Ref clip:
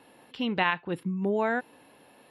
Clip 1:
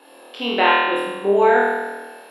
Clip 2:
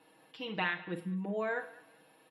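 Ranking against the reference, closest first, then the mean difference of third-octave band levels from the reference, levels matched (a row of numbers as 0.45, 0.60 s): 2, 1; 3.5, 8.0 dB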